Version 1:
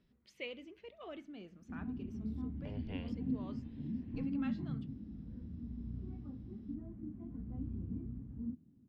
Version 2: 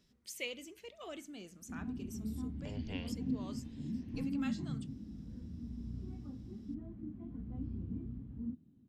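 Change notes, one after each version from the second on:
master: remove high-frequency loss of the air 320 metres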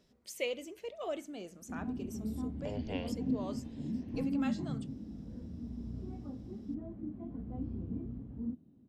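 master: add parametric band 600 Hz +11 dB 1.6 octaves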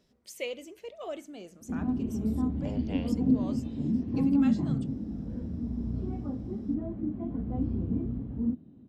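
background +9.0 dB

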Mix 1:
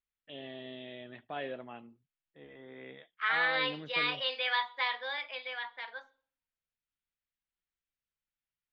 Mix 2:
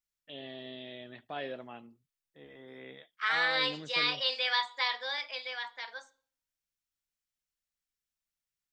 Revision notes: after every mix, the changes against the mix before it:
master: remove low-pass filter 3,400 Hz 24 dB per octave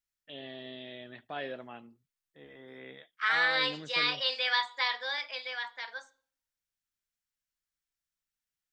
master: add parametric band 1,600 Hz +3 dB 0.64 octaves

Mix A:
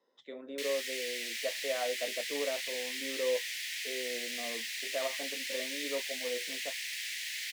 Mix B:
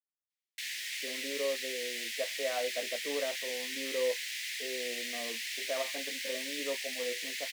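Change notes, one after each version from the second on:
speech: entry +0.75 s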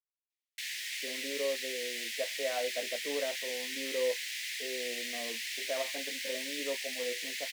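master: add parametric band 1,200 Hz −5.5 dB 0.24 octaves

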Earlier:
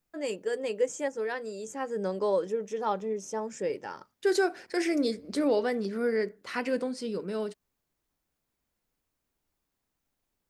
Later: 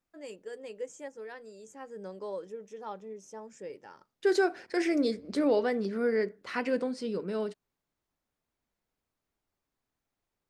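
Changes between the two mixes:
first voice −11.0 dB
second voice: add high-shelf EQ 7,500 Hz −11 dB

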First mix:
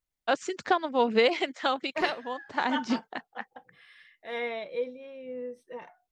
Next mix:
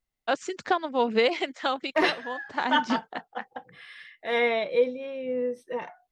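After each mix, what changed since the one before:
second voice +9.0 dB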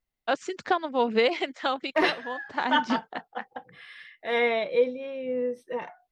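master: add parametric band 7,400 Hz −3.5 dB 0.93 octaves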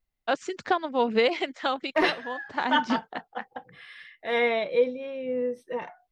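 master: add low-shelf EQ 74 Hz +7 dB

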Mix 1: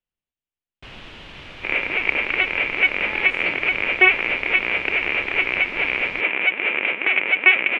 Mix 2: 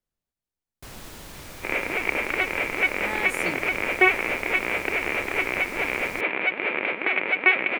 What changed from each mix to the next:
speech +5.5 dB
second sound: send on
master: remove low-pass with resonance 2,900 Hz, resonance Q 3.2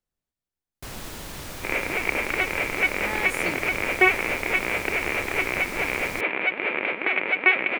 first sound +4.5 dB

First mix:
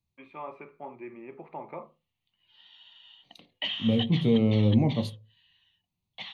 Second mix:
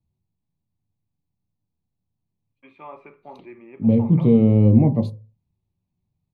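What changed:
first voice: entry +2.45 s
second voice: add tilt shelving filter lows +8.5 dB, about 1,300 Hz
background: muted

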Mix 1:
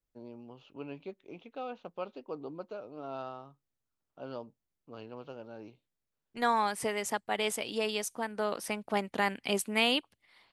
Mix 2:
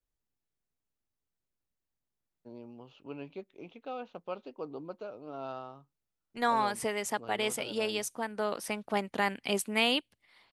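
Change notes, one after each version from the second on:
first voice: entry +2.30 s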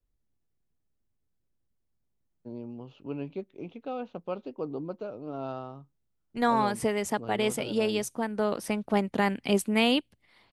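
master: add low-shelf EQ 430 Hz +11.5 dB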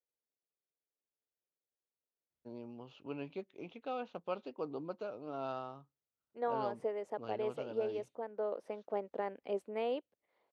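second voice: add resonant band-pass 500 Hz, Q 2.5
master: add low-shelf EQ 430 Hz −11.5 dB

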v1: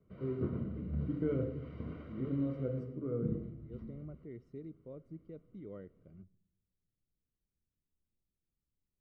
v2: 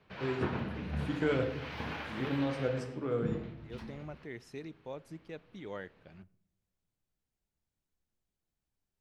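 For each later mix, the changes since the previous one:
master: remove moving average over 52 samples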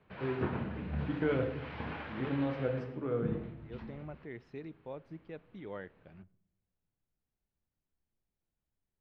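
master: add high-frequency loss of the air 310 metres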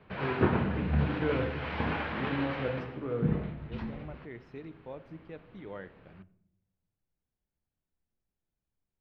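second voice: send +9.0 dB
background +9.0 dB

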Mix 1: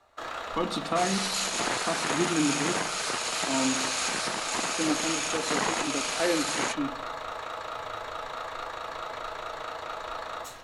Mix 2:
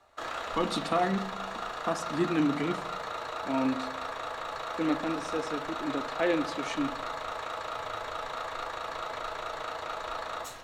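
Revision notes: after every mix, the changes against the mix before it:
second sound: muted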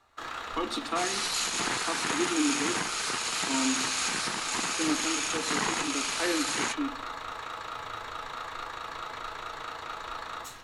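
speech: add Butterworth high-pass 230 Hz 72 dB per octave
second sound: unmuted
master: add parametric band 600 Hz −10 dB 0.63 octaves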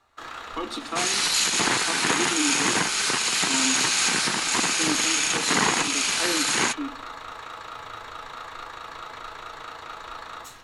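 second sound +8.0 dB

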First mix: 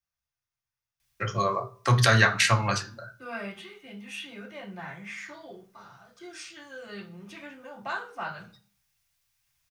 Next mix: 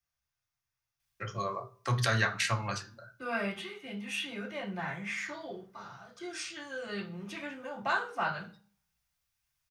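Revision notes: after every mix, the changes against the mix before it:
first voice −8.5 dB
second voice +3.0 dB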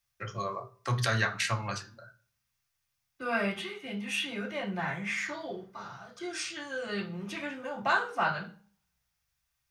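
first voice: entry −1.00 s
second voice +3.5 dB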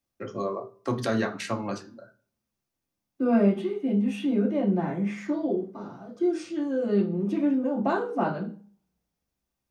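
first voice: add tilt shelving filter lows −5 dB, about 650 Hz
master: remove drawn EQ curve 130 Hz 0 dB, 260 Hz −20 dB, 1,700 Hz +10 dB

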